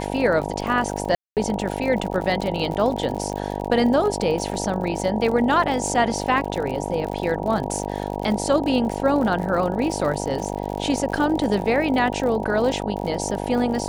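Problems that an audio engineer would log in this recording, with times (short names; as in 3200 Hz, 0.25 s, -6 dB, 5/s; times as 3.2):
buzz 50 Hz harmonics 19 -28 dBFS
crackle 58/s -28 dBFS
1.15–1.37 gap 0.218 s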